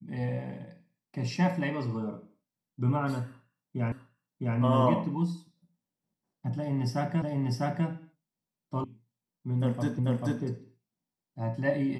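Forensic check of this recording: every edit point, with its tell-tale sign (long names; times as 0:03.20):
0:03.92: the same again, the last 0.66 s
0:07.22: the same again, the last 0.65 s
0:08.84: cut off before it has died away
0:09.99: the same again, the last 0.44 s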